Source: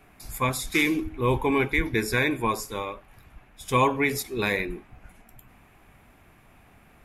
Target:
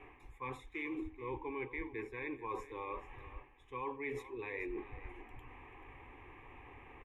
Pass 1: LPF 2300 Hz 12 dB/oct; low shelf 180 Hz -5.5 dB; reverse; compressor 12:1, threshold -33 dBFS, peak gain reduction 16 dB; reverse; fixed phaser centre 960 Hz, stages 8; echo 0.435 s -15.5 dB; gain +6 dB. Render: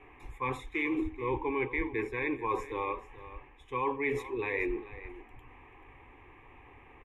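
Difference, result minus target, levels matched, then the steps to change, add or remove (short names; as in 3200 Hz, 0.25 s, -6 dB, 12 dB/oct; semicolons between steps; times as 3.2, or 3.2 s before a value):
compressor: peak gain reduction -9.5 dB
change: compressor 12:1, threshold -43.5 dBFS, peak gain reduction 25.5 dB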